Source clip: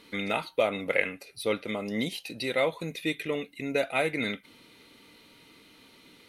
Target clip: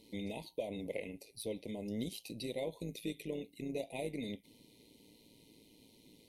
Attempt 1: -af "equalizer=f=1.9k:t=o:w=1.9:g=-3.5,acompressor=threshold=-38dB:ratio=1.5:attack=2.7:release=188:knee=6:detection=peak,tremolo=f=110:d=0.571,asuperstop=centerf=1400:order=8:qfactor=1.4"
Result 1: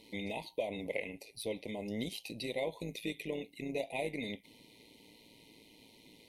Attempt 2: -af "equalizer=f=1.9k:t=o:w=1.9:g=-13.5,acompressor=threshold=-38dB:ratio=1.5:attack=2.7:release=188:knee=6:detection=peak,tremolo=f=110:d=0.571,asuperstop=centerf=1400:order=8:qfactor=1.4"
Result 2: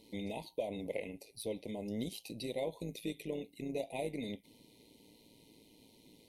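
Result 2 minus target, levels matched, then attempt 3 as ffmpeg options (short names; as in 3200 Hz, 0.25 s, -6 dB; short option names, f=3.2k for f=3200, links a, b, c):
1000 Hz band +3.0 dB
-af "equalizer=f=1.9k:t=o:w=1.9:g=-13.5,acompressor=threshold=-38dB:ratio=1.5:attack=2.7:release=188:knee=6:detection=peak,tremolo=f=110:d=0.571,asuperstop=centerf=1400:order=8:qfactor=1.4,equalizer=f=820:t=o:w=1:g=-4.5"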